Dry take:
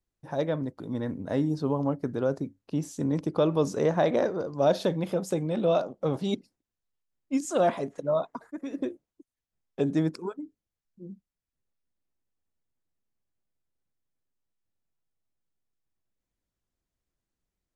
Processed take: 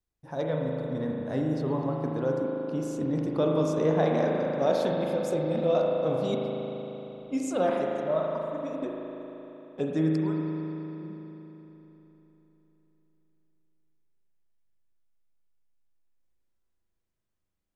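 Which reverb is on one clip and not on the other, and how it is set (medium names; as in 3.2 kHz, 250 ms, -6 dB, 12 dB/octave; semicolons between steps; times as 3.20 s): spring tank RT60 3.7 s, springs 38 ms, chirp 75 ms, DRR -1.5 dB; trim -3.5 dB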